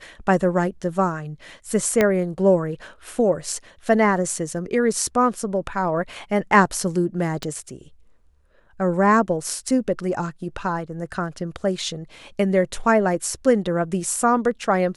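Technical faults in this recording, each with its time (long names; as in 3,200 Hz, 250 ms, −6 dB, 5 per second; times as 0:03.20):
0:02.01: click −5 dBFS
0:07.43: click −14 dBFS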